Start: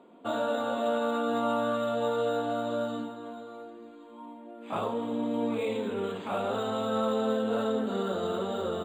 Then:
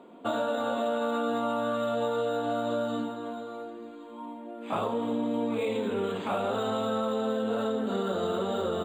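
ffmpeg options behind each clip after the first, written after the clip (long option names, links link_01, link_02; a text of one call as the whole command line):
ffmpeg -i in.wav -af "acompressor=threshold=-30dB:ratio=6,volume=4.5dB" out.wav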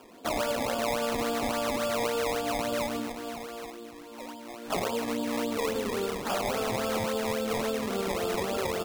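ffmpeg -i in.wav -af "bass=frequency=250:gain=-5,treble=frequency=4000:gain=10,acrusher=samples=21:mix=1:aa=0.000001:lfo=1:lforange=21:lforate=3.6" out.wav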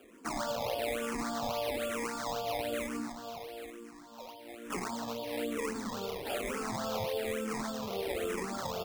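ffmpeg -i in.wav -filter_complex "[0:a]asplit=2[link_01][link_02];[link_02]afreqshift=-1.1[link_03];[link_01][link_03]amix=inputs=2:normalize=1,volume=-2.5dB" out.wav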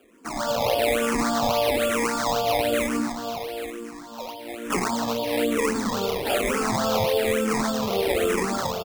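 ffmpeg -i in.wav -af "dynaudnorm=framelen=170:gausssize=5:maxgain=12dB,aecho=1:1:292:0.0668" out.wav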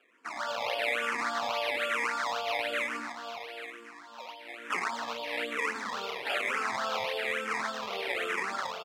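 ffmpeg -i in.wav -af "bandpass=frequency=1900:width_type=q:width=1.3:csg=0" out.wav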